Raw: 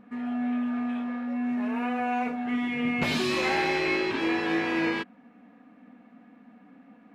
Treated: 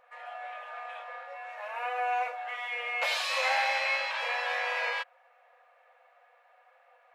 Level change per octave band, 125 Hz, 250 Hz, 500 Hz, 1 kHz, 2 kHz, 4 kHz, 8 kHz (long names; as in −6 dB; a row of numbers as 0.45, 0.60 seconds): below −40 dB, below −40 dB, −6.5 dB, 0.0 dB, 0.0 dB, 0.0 dB, 0.0 dB